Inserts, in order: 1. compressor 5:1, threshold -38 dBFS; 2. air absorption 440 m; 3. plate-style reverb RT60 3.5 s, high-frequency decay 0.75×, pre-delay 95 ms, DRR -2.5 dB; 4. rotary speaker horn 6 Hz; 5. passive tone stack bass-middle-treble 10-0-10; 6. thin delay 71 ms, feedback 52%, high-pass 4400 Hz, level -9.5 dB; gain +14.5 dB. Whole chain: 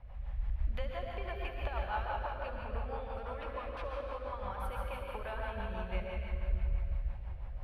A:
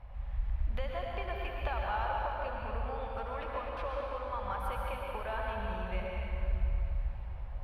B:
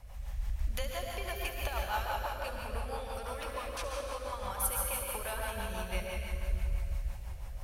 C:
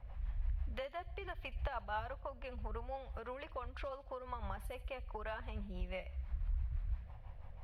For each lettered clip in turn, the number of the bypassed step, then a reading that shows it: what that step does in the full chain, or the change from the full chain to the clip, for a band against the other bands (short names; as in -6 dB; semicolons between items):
4, 1 kHz band +2.0 dB; 2, 4 kHz band +8.0 dB; 3, loudness change -5.0 LU